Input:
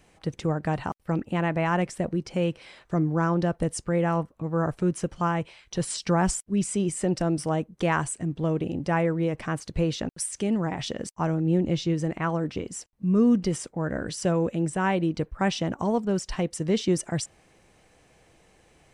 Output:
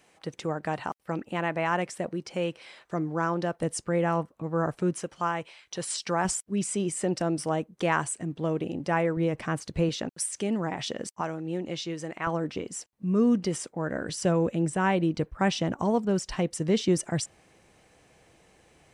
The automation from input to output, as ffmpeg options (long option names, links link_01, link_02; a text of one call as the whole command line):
ffmpeg -i in.wav -af "asetnsamples=nb_out_samples=441:pad=0,asendcmd='3.63 highpass f 190;5.01 highpass f 560;6.25 highpass f 240;9.17 highpass f 83;9.89 highpass f 240;11.21 highpass f 710;12.27 highpass f 220;14.09 highpass f 57',highpass=frequency=400:poles=1" out.wav